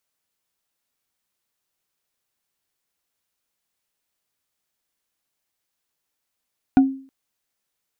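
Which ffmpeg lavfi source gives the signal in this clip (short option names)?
-f lavfi -i "aevalsrc='0.447*pow(10,-3*t/0.44)*sin(2*PI*268*t)+0.158*pow(10,-3*t/0.13)*sin(2*PI*738.9*t)+0.0562*pow(10,-3*t/0.058)*sin(2*PI*1448.3*t)+0.02*pow(10,-3*t/0.032)*sin(2*PI*2394*t)+0.00708*pow(10,-3*t/0.02)*sin(2*PI*3575.1*t)':d=0.32:s=44100"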